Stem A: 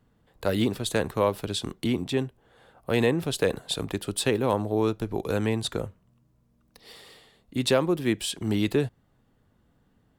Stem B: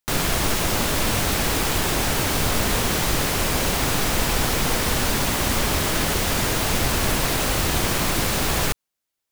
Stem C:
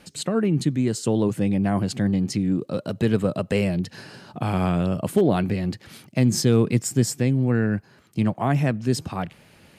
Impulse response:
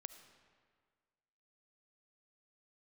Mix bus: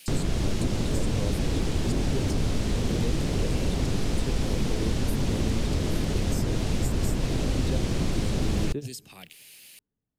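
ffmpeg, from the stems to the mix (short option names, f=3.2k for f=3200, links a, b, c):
-filter_complex "[0:a]volume=-6.5dB,asplit=2[a][b];[b]volume=-16dB[c];[1:a]lowpass=7.1k,volume=0dB[d];[2:a]aemphasis=mode=production:type=riaa,acompressor=threshold=-36dB:ratio=1.5,highshelf=f=1.8k:t=q:w=1.5:g=11,volume=-12.5dB,asplit=2[e][f];[f]apad=whole_len=449152[g];[a][g]sidechaingate=range=-33dB:threshold=-45dB:ratio=16:detection=peak[h];[3:a]atrim=start_sample=2205[i];[c][i]afir=irnorm=-1:irlink=0[j];[h][d][e][j]amix=inputs=4:normalize=0,lowshelf=f=340:g=5.5,acrossover=split=540|2300[k][l][m];[k]acompressor=threshold=-22dB:ratio=4[n];[l]acompressor=threshold=-49dB:ratio=4[o];[m]acompressor=threshold=-41dB:ratio=4[p];[n][o][p]amix=inputs=3:normalize=0"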